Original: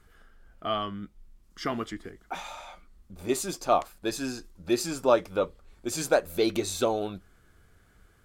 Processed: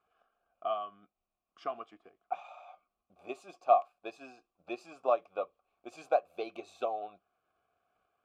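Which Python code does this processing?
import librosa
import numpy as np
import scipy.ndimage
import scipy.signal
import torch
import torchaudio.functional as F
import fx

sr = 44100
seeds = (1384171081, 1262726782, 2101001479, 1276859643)

y = fx.transient(x, sr, attack_db=5, sustain_db=-2)
y = fx.vowel_filter(y, sr, vowel='a')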